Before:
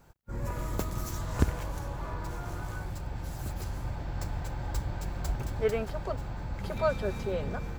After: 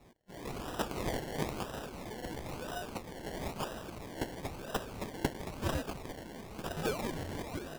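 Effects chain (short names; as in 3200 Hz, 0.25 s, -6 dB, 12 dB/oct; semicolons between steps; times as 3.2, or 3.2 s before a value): elliptic high-pass 1600 Hz; in parallel at -1 dB: vocal rider within 3 dB 2 s; on the sum: decimation with a swept rate 28×, swing 60% 1 Hz; gain +5 dB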